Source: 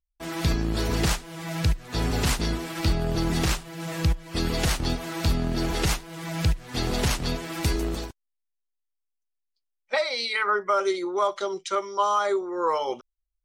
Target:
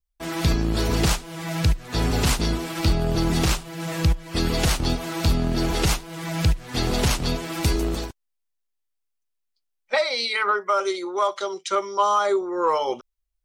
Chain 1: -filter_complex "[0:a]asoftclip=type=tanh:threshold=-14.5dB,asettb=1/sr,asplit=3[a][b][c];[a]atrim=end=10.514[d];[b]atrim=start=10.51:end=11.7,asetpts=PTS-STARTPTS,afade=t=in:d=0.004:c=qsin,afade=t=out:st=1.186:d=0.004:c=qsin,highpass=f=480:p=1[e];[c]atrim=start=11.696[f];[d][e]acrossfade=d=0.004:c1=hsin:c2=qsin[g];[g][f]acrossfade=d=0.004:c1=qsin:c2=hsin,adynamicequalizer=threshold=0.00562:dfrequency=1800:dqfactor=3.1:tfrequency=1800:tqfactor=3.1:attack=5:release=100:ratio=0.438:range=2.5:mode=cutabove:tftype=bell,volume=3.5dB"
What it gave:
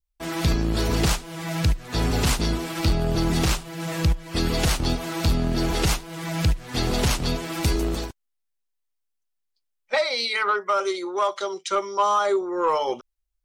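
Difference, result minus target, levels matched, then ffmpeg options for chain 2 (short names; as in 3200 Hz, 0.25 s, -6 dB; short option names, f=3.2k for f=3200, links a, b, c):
soft clip: distortion +11 dB
-filter_complex "[0:a]asoftclip=type=tanh:threshold=-8.5dB,asettb=1/sr,asplit=3[a][b][c];[a]atrim=end=10.514[d];[b]atrim=start=10.51:end=11.7,asetpts=PTS-STARTPTS,afade=t=in:d=0.004:c=qsin,afade=t=out:st=1.186:d=0.004:c=qsin,highpass=f=480:p=1[e];[c]atrim=start=11.696[f];[d][e]acrossfade=d=0.004:c1=hsin:c2=qsin[g];[g][f]acrossfade=d=0.004:c1=qsin:c2=hsin,adynamicequalizer=threshold=0.00562:dfrequency=1800:dqfactor=3.1:tfrequency=1800:tqfactor=3.1:attack=5:release=100:ratio=0.438:range=2.5:mode=cutabove:tftype=bell,volume=3.5dB"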